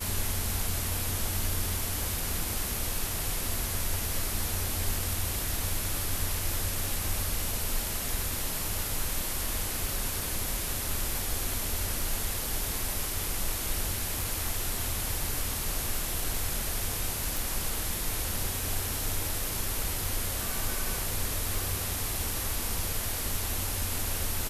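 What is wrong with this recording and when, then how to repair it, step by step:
17.37 s: pop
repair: de-click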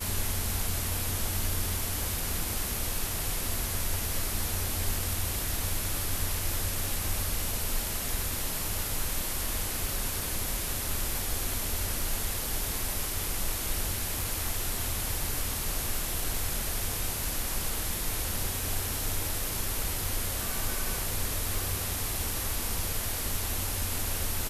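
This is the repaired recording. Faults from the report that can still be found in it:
nothing left

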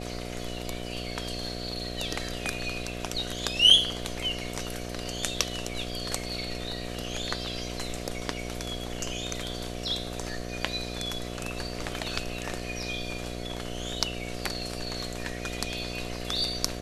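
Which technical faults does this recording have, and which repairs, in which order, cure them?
buzz 60 Hz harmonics 12 -37 dBFS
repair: de-hum 60 Hz, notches 12

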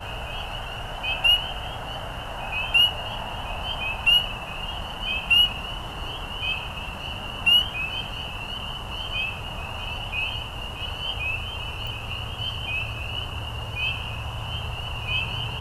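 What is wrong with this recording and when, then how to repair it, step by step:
11.87 s: pop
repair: de-click

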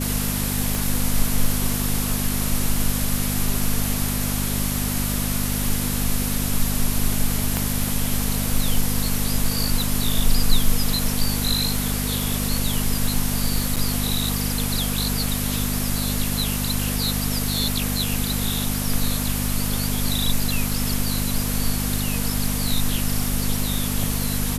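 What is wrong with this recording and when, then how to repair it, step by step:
crackle 25 per s -28 dBFS
hum 50 Hz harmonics 5 -26 dBFS
0.75 s: pop
7.57 s: pop -7 dBFS
13.76–13.77 s: dropout 7 ms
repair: de-click; de-hum 50 Hz, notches 5; interpolate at 13.76 s, 7 ms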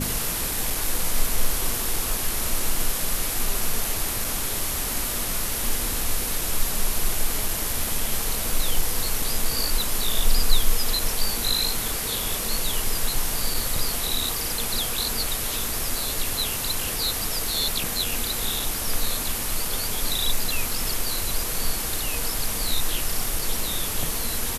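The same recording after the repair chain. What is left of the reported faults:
nothing left

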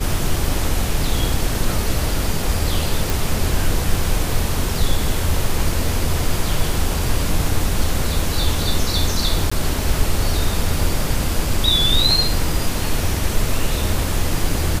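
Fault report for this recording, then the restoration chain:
3.10 s: pop
9.50–9.52 s: dropout 15 ms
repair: de-click; interpolate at 9.50 s, 15 ms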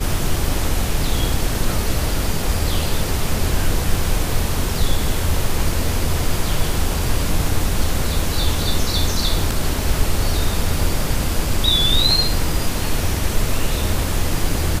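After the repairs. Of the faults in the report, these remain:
nothing left

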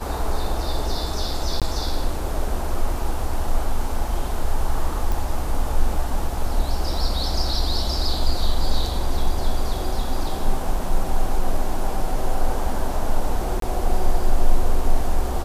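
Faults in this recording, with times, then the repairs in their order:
1.60–1.62 s: dropout 17 ms
5.12 s: pop
13.60–13.62 s: dropout 23 ms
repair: de-click; interpolate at 1.60 s, 17 ms; interpolate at 13.60 s, 23 ms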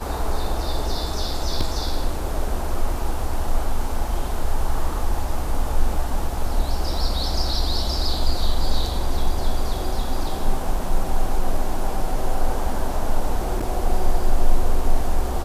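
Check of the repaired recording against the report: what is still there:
nothing left

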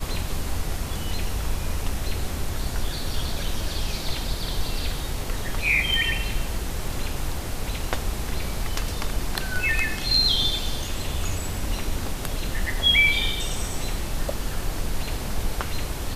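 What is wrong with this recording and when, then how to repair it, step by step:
5.94 s: pop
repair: de-click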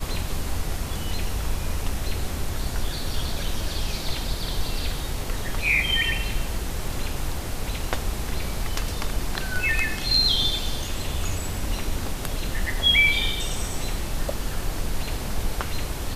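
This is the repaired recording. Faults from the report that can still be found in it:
nothing left

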